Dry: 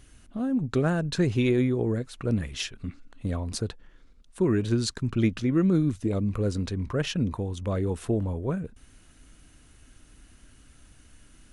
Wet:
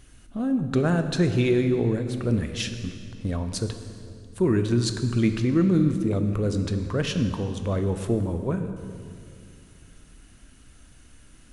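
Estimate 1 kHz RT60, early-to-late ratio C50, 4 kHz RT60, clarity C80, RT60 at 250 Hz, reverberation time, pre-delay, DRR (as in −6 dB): 2.2 s, 8.5 dB, 1.9 s, 9.5 dB, 3.0 s, 2.4 s, 16 ms, 7.5 dB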